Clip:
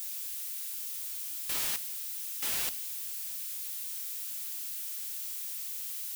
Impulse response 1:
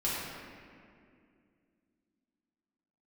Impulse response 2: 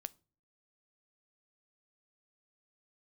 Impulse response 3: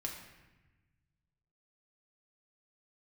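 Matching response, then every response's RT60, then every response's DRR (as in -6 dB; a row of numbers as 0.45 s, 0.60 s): 2; 2.3 s, no single decay rate, 1.1 s; -8.5 dB, 16.5 dB, -0.5 dB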